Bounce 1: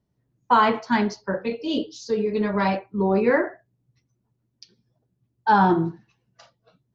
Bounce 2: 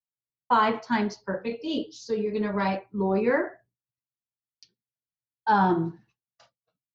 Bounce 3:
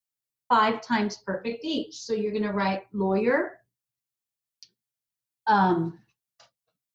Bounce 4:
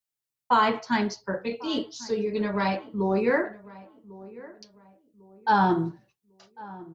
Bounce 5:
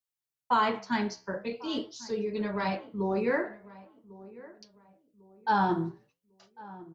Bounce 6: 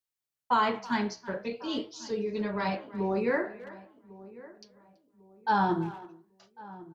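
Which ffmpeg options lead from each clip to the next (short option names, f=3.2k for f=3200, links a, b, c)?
-af "agate=range=-33dB:threshold=-46dB:ratio=3:detection=peak,volume=-4dB"
-af "highshelf=f=3.8k:g=7"
-filter_complex "[0:a]asplit=2[a][b];[b]adelay=1099,lowpass=f=1.3k:p=1,volume=-19dB,asplit=2[c][d];[d]adelay=1099,lowpass=f=1.3k:p=1,volume=0.36,asplit=2[e][f];[f]adelay=1099,lowpass=f=1.3k:p=1,volume=0.36[g];[a][c][e][g]amix=inputs=4:normalize=0"
-af "flanger=delay=5.3:depth=8.4:regen=-82:speed=0.45:shape=sinusoidal"
-filter_complex "[0:a]asplit=2[a][b];[b]adelay=330,highpass=300,lowpass=3.4k,asoftclip=type=hard:threshold=-22dB,volume=-17dB[c];[a][c]amix=inputs=2:normalize=0"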